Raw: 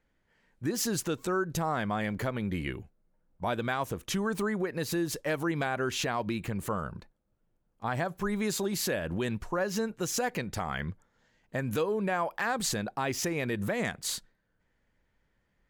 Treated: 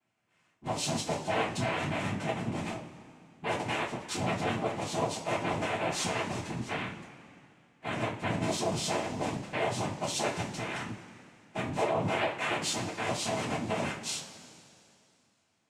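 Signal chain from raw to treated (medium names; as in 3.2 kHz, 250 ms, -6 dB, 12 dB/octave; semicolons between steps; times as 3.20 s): noise-vocoded speech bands 4; two-slope reverb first 0.29 s, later 2.6 s, from -19 dB, DRR -5 dB; trim -6.5 dB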